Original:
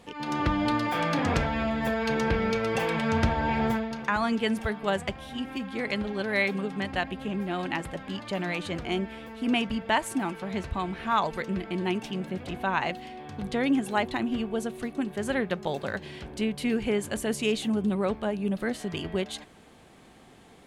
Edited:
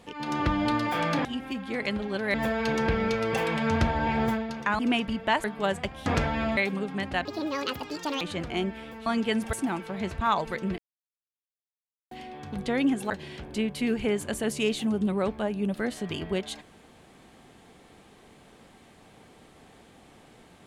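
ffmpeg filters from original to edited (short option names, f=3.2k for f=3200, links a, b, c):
-filter_complex "[0:a]asplit=15[a][b][c][d][e][f][g][h][i][j][k][l][m][n][o];[a]atrim=end=1.252[p];[b]atrim=start=5.298:end=6.392[q];[c]atrim=start=1.758:end=4.212[r];[d]atrim=start=9.408:end=10.062[s];[e]atrim=start=4.678:end=5.302[t];[f]atrim=start=1.248:end=1.762[u];[g]atrim=start=6.388:end=7.074[v];[h]atrim=start=7.07:end=8.56,asetpts=PTS-STARTPTS,asetrate=68355,aresample=44100[w];[i]atrim=start=8.556:end=9.412[x];[j]atrim=start=4.208:end=4.682[y];[k]atrim=start=10.058:end=10.742[z];[l]atrim=start=11.068:end=11.64,asetpts=PTS-STARTPTS,afade=t=out:st=0.568:d=0.004:c=hsin[aa];[m]atrim=start=11.64:end=12.97,asetpts=PTS-STARTPTS,volume=0[ab];[n]atrim=start=12.97:end=13.962,asetpts=PTS-STARTPTS,afade=t=in:d=0.004:c=hsin[ac];[o]atrim=start=15.928[ad];[p][q]acrossfade=d=0.004:c1=hsin:c2=hsin[ae];[ae][r]acrossfade=d=0.004:c1=hsin:c2=hsin[af];[af][s]acrossfade=d=0.004:c1=hsin:c2=hsin[ag];[ag][t]acrossfade=d=0.004:c1=hsin:c2=hsin[ah];[ah][u]acrossfade=d=0.004:c1=hsin:c2=hsin[ai];[ai][v]acrossfade=d=0.004:c1=hsin:c2=hsin[aj];[aj][w]acrossfade=d=0.004:c1=hsin:c2=hsin[ak];[ak][x]acrossfade=d=0.004:c1=hsin:c2=hsin[al];[al][y]acrossfade=d=0.004:c1=hsin:c2=hsin[am];[am][z]acrossfade=d=0.004:c1=hsin:c2=hsin[an];[aa][ab][ac]concat=n=3:v=0:a=1[ao];[an][ao]acrossfade=d=0.004:c1=hsin:c2=hsin[ap];[ap][ad]acrossfade=d=0.004:c1=hsin:c2=hsin"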